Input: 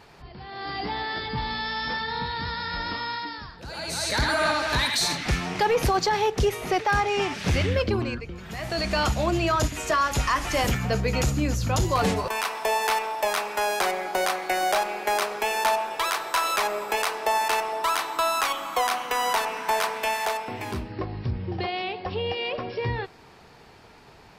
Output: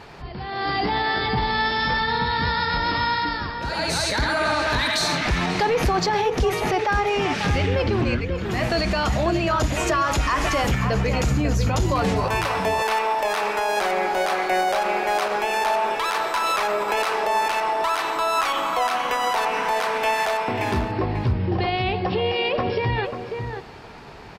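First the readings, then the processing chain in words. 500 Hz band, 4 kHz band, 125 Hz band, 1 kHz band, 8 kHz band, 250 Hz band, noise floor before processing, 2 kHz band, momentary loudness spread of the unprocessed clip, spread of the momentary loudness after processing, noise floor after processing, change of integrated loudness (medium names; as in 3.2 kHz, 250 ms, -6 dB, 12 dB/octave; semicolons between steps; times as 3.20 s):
+4.0 dB, +2.0 dB, +4.5 dB, +3.5 dB, -1.0 dB, +5.0 dB, -51 dBFS, +3.5 dB, 8 LU, 4 LU, -32 dBFS, +3.5 dB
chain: treble shelf 6.7 kHz -9.5 dB; peak limiter -23.5 dBFS, peak gain reduction 10.5 dB; echo from a far wall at 93 m, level -7 dB; trim +9 dB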